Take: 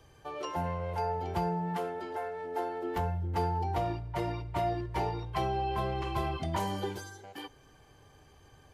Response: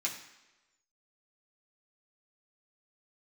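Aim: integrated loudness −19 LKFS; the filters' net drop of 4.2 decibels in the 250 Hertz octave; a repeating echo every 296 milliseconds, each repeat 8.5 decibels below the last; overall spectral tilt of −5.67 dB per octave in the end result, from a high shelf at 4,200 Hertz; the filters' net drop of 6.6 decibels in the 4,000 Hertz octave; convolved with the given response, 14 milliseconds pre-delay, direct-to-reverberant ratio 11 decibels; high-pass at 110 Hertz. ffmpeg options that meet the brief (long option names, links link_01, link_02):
-filter_complex "[0:a]highpass=110,equalizer=frequency=250:width_type=o:gain=-7,equalizer=frequency=4000:width_type=o:gain=-7,highshelf=frequency=4200:gain=-4.5,aecho=1:1:296|592|888|1184:0.376|0.143|0.0543|0.0206,asplit=2[link_01][link_02];[1:a]atrim=start_sample=2205,adelay=14[link_03];[link_02][link_03]afir=irnorm=-1:irlink=0,volume=-14.5dB[link_04];[link_01][link_04]amix=inputs=2:normalize=0,volume=16.5dB"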